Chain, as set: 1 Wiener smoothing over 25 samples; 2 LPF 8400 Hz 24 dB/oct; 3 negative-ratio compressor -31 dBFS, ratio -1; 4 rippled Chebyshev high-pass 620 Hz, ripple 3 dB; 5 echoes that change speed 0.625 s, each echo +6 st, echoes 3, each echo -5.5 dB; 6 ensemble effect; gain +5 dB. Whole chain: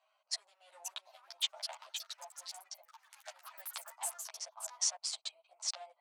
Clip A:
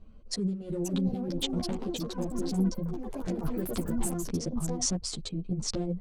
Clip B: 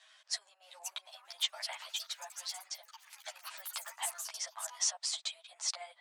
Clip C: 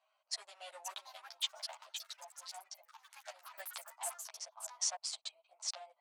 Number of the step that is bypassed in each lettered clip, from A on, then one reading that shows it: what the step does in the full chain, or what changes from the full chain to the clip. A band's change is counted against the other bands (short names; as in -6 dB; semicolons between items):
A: 4, 500 Hz band +18.5 dB; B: 1, 2 kHz band +3.5 dB; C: 3, 8 kHz band -3.0 dB